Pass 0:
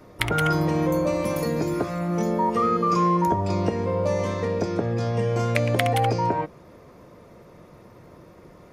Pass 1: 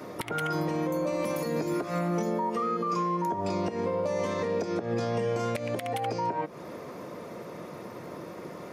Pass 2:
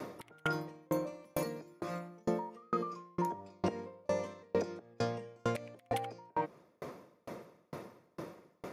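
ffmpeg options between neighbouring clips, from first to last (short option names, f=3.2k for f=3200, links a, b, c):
-af "highpass=180,acompressor=threshold=-32dB:ratio=6,alimiter=level_in=5dB:limit=-24dB:level=0:latency=1:release=196,volume=-5dB,volume=8.5dB"
-af "aeval=exprs='val(0)*pow(10,-38*if(lt(mod(2.2*n/s,1),2*abs(2.2)/1000),1-mod(2.2*n/s,1)/(2*abs(2.2)/1000),(mod(2.2*n/s,1)-2*abs(2.2)/1000)/(1-2*abs(2.2)/1000))/20)':c=same,volume=1dB"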